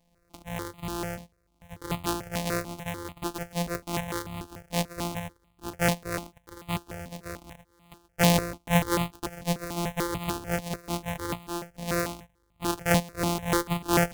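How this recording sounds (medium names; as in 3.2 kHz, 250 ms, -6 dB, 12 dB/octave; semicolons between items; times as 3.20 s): a buzz of ramps at a fixed pitch in blocks of 256 samples; notches that jump at a steady rate 6.8 Hz 370–1600 Hz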